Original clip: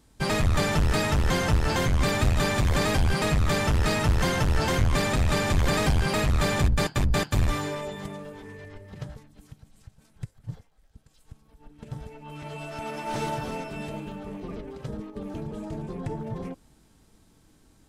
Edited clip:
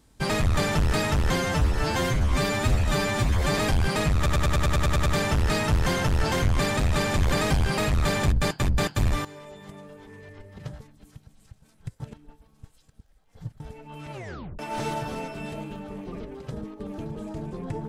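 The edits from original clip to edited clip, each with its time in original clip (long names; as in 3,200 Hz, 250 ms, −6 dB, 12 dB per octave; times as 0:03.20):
0:01.36–0:02.84: time-stretch 1.5×
0:03.42: stutter 0.10 s, 10 plays
0:07.61–0:09.02: fade in, from −14.5 dB
0:10.36–0:11.96: reverse
0:12.48: tape stop 0.47 s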